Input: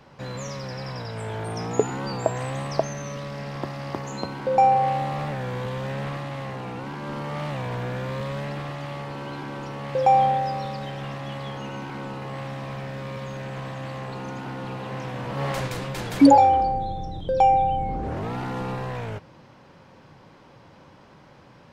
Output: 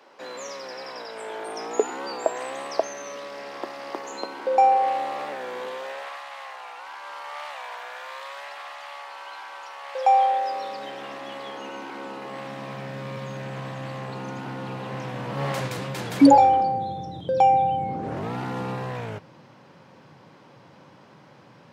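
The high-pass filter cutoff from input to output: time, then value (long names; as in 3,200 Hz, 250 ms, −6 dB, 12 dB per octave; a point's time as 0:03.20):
high-pass filter 24 dB per octave
0:05.66 320 Hz
0:06.18 730 Hz
0:09.80 730 Hz
0:10.88 270 Hz
0:12.00 270 Hz
0:13.14 110 Hz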